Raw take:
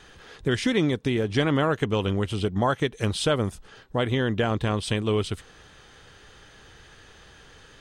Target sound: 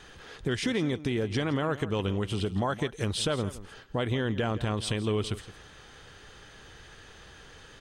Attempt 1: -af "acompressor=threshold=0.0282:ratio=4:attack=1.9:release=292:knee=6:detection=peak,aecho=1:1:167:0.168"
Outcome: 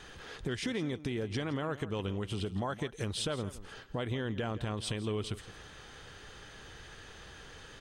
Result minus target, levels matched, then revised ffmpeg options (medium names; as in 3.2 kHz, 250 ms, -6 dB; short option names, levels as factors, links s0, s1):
compression: peak gain reduction +6.5 dB
-af "acompressor=threshold=0.075:ratio=4:attack=1.9:release=292:knee=6:detection=peak,aecho=1:1:167:0.168"